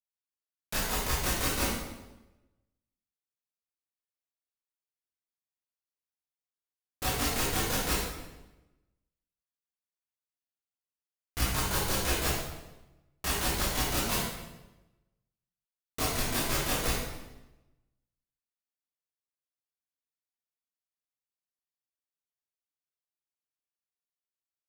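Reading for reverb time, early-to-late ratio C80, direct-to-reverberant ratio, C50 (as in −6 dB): 1.0 s, 2.5 dB, −9.5 dB, −1.0 dB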